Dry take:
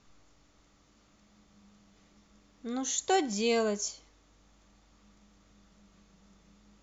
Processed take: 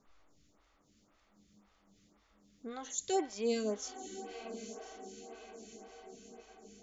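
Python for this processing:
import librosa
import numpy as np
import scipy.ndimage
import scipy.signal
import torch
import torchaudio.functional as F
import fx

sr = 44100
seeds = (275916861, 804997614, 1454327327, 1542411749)

p1 = x + fx.echo_diffused(x, sr, ms=1010, feedback_pct=55, wet_db=-11.0, dry=0)
p2 = fx.stagger_phaser(p1, sr, hz=1.9)
y = p2 * librosa.db_to_amplitude(-2.5)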